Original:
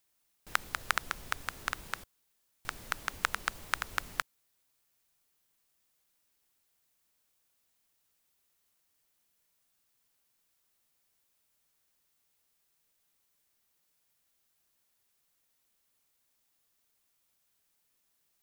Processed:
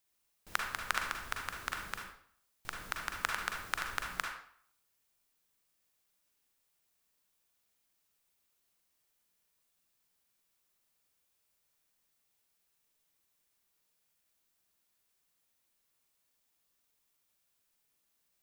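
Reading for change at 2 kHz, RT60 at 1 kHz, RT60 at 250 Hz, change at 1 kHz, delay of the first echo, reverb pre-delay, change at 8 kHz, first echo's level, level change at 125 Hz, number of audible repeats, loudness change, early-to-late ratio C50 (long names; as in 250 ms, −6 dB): −1.5 dB, 0.60 s, 0.55 s, −2.0 dB, no echo audible, 38 ms, −2.0 dB, no echo audible, −2.5 dB, no echo audible, −2.0 dB, 3.5 dB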